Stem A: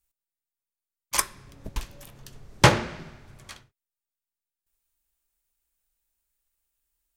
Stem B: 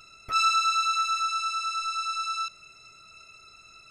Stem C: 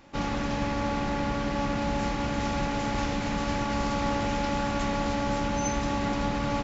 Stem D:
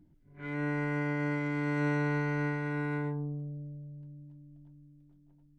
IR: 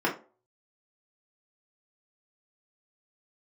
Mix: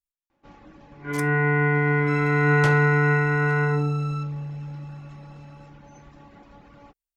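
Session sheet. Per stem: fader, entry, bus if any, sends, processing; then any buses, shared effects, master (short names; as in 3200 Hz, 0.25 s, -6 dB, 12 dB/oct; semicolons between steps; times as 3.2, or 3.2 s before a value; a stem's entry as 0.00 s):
-15.0 dB, 0.00 s, muted 1.28–2.06, no send, dry
-15.5 dB, 1.75 s, send -9 dB, compressor, threshold -26 dBFS, peak gain reduction 7.5 dB
-18.5 dB, 0.30 s, send -20.5 dB, reverb removal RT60 0.94 s; high shelf 4000 Hz -10.5 dB
+2.0 dB, 0.65 s, send -5 dB, LPF 3800 Hz 24 dB/oct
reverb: on, RT60 0.40 s, pre-delay 3 ms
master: dry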